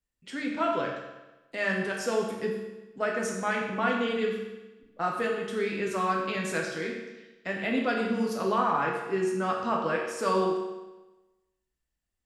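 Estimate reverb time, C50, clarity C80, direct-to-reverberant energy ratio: 1.1 s, 3.0 dB, 5.0 dB, -1.5 dB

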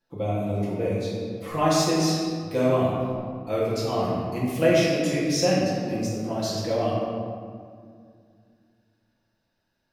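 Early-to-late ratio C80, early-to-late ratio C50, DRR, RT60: 1.0 dB, -1.5 dB, -9.0 dB, 2.1 s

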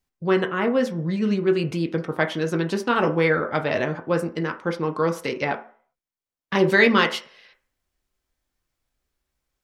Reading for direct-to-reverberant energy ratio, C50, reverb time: 4.0 dB, 13.5 dB, 0.45 s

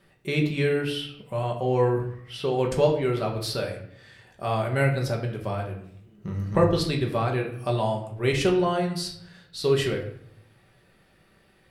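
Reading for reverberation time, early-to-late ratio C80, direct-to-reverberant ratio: 0.70 s, 11.5 dB, 0.0 dB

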